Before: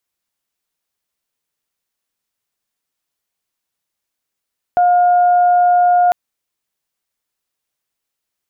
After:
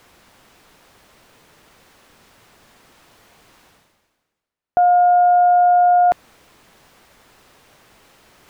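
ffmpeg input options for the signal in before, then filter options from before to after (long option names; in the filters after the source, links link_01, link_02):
-f lavfi -i "aevalsrc='0.376*sin(2*PI*712*t)+0.0422*sin(2*PI*1424*t)':duration=1.35:sample_rate=44100"
-af "lowpass=frequency=1300:poles=1,areverse,acompressor=mode=upward:threshold=-23dB:ratio=2.5,areverse"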